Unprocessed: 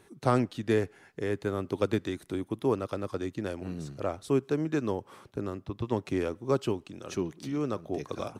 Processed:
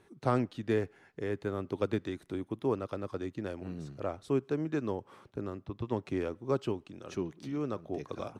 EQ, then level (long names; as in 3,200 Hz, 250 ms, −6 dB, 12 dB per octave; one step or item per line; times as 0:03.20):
high-shelf EQ 6,000 Hz −10 dB
−3.5 dB